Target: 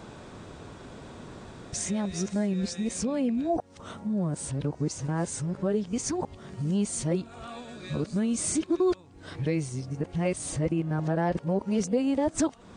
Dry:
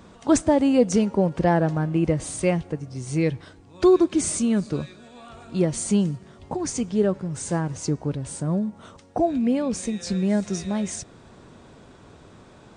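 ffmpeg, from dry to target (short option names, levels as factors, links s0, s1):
-af "areverse,acompressor=threshold=0.0158:ratio=2,volume=1.58"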